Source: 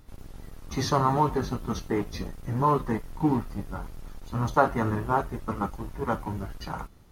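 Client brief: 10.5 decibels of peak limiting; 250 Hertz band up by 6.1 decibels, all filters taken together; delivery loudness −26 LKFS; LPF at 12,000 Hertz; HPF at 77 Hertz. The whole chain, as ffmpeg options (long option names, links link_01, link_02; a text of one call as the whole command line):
ffmpeg -i in.wav -af "highpass=77,lowpass=12000,equalizer=frequency=250:width_type=o:gain=7.5,volume=3.5dB,alimiter=limit=-13.5dB:level=0:latency=1" out.wav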